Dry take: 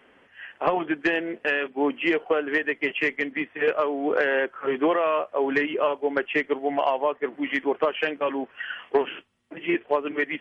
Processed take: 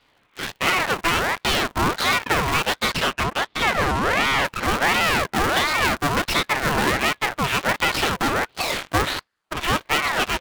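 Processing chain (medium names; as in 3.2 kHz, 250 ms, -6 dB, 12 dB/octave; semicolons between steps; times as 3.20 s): cycle switcher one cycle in 2, inverted; 2.93–4.45 s: low-pass 2.1 kHz 6 dB/octave; in parallel at -4.5 dB: fuzz box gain 39 dB, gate -44 dBFS; on the sum: ring modulator with a swept carrier 1.1 kHz, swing 55%, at 1.4 Hz; trim -2 dB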